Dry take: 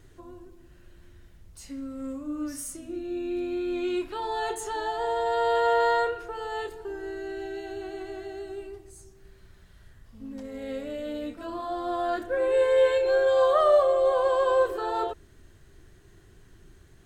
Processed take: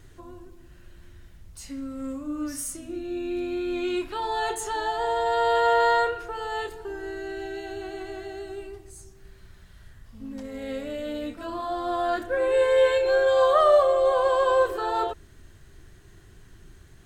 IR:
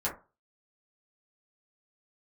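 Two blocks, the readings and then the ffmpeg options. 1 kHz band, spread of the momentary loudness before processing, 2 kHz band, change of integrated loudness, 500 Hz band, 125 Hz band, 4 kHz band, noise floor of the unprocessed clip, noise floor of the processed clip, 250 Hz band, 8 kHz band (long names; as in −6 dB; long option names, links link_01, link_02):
+3.0 dB, 17 LU, +3.5 dB, +2.0 dB, +1.0 dB, +3.5 dB, +4.0 dB, −55 dBFS, −51 dBFS, +1.0 dB, +4.0 dB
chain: -af "equalizer=frequency=410:width_type=o:width=1.5:gain=-3.5,volume=4dB"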